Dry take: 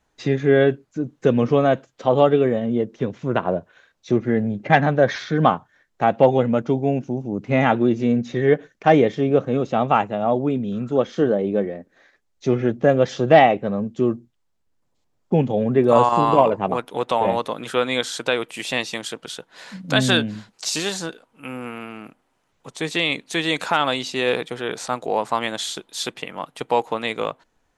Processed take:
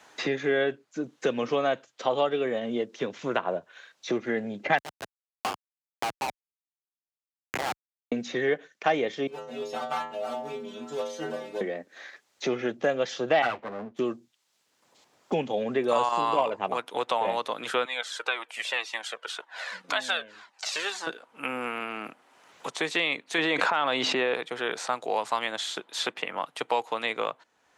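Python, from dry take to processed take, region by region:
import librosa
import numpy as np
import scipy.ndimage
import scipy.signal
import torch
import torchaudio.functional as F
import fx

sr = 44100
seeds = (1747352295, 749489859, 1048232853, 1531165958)

y = fx.chain(x, sr, fx.brickwall_bandpass(low_hz=690.0, high_hz=3600.0),
    fx.schmitt(flips_db=-19.5), at=(4.78, 8.12))
y = fx.chain(y, sr, fx.halfwave_gain(db=-7.0),
    fx.high_shelf(hz=5300.0, db=12.0),
    fx.stiff_resonator(f0_hz=76.0, decay_s=0.77, stiffness=0.008), at=(9.27, 11.61))
y = fx.chain(y, sr, fx.lower_of_two(delay_ms=8.5),
    fx.high_shelf(hz=4300.0, db=-10.5),
    fx.band_widen(depth_pct=40), at=(13.42, 13.99))
y = fx.chain(y, sr, fx.highpass(hz=550.0, slope=12),
    fx.comb_cascade(direction='falling', hz=1.9), at=(17.85, 21.07))
y = fx.chain(y, sr, fx.lowpass(hz=2000.0, slope=6),
    fx.env_flatten(amount_pct=100), at=(23.38, 24.34))
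y = fx.weighting(y, sr, curve='A')
y = fx.band_squash(y, sr, depth_pct=70)
y = y * librosa.db_to_amplitude(-4.0)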